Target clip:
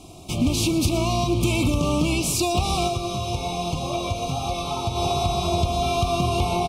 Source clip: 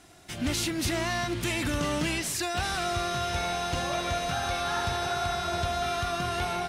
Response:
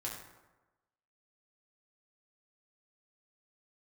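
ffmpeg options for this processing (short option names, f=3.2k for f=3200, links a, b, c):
-filter_complex "[0:a]lowshelf=f=450:g=7.5,acompressor=threshold=-25dB:ratio=6,asplit=3[a][b][c];[a]afade=t=out:st=2.87:d=0.02[d];[b]flanger=delay=5.3:depth=4.7:regen=50:speed=1.1:shape=triangular,afade=t=in:st=2.87:d=0.02,afade=t=out:st=4.95:d=0.02[e];[c]afade=t=in:st=4.95:d=0.02[f];[d][e][f]amix=inputs=3:normalize=0,asuperstop=centerf=1700:order=20:qfactor=1.8,aecho=1:1:118:0.2,volume=7.5dB"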